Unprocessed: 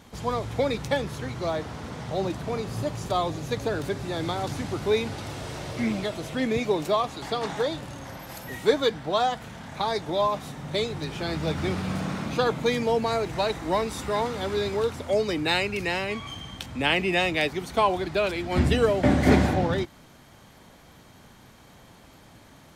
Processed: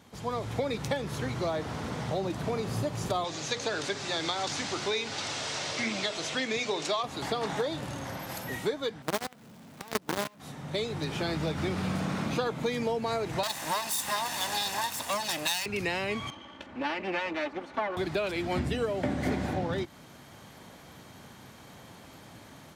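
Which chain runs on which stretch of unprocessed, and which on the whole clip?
3.24–7.03 s: low-pass 6.9 kHz 24 dB/octave + tilt EQ +3.5 dB/octave + hum notches 60/120/180/240/300/360/420/480 Hz
9.02–10.40 s: peaking EQ 240 Hz +15 dB 2.1 oct + companded quantiser 2-bit + upward expansion 2.5:1, over -20 dBFS
13.43–15.66 s: comb filter that takes the minimum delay 1.1 ms + RIAA curve recording
16.30–17.97 s: comb filter that takes the minimum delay 3.4 ms + Bessel low-pass 1 kHz + tilt EQ +3.5 dB/octave
whole clip: level rider gain up to 7 dB; high-pass 80 Hz; compression 6:1, threshold -22 dBFS; trim -5 dB

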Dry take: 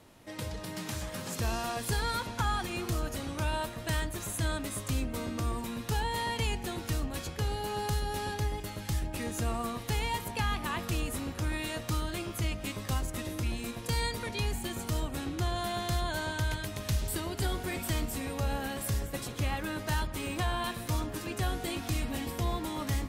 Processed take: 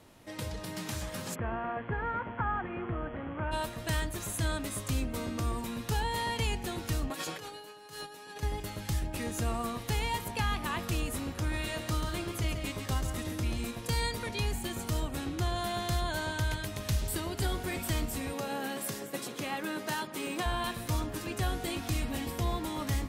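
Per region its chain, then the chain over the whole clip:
1.34–3.51 s: steep low-pass 2.1 kHz + bass shelf 74 Hz -10 dB + mains buzz 120 Hz, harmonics 28, -55 dBFS -3 dB/octave
7.10–8.43 s: high-pass 280 Hz + compressor with a negative ratio -42 dBFS, ratio -0.5 + comb 6.5 ms, depth 61%
11.40–13.65 s: treble shelf 10 kHz -3.5 dB + band-stop 2.6 kHz, Q 29 + delay 137 ms -7.5 dB
18.33–20.46 s: high-pass 170 Hz 24 dB/octave + peaking EQ 400 Hz +3.5 dB 0.29 oct
whole clip: none

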